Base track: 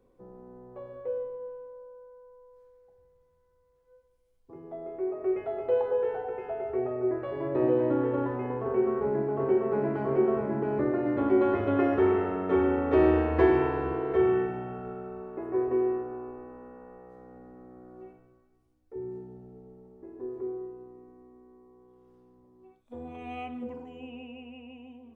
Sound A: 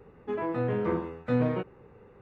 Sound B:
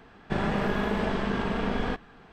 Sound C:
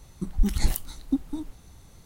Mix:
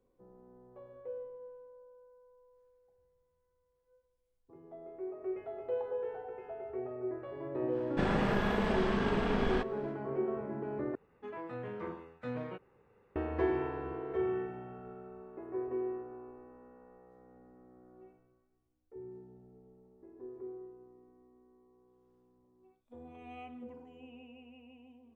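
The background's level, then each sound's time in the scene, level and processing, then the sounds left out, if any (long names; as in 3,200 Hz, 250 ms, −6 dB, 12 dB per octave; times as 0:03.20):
base track −9.5 dB
0:07.67: mix in B −3.5 dB, fades 0.10 s
0:10.95: overwrite with A −9 dB + low-shelf EQ 440 Hz −7 dB
not used: C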